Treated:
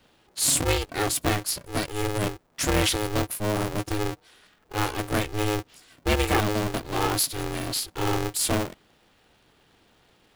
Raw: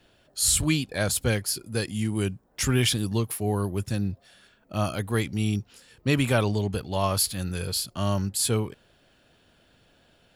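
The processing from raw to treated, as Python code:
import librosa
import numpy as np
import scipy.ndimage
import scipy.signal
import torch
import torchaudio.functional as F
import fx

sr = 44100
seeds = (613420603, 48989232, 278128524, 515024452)

y = x * np.sign(np.sin(2.0 * np.pi * 210.0 * np.arange(len(x)) / sr))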